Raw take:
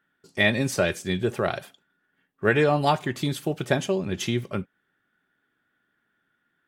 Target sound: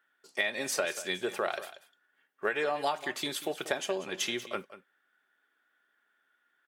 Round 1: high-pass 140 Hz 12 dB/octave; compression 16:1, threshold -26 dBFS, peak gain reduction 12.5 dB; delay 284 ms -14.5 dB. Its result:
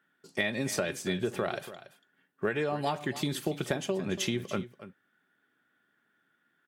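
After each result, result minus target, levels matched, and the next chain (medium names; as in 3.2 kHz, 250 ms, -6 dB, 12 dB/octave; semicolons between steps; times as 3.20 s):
125 Hz band +15.5 dB; echo 96 ms late
high-pass 530 Hz 12 dB/octave; compression 16:1, threshold -26 dBFS, peak gain reduction 11 dB; delay 284 ms -14.5 dB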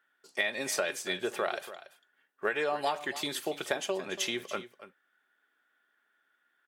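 echo 96 ms late
high-pass 530 Hz 12 dB/octave; compression 16:1, threshold -26 dBFS, peak gain reduction 11 dB; delay 188 ms -14.5 dB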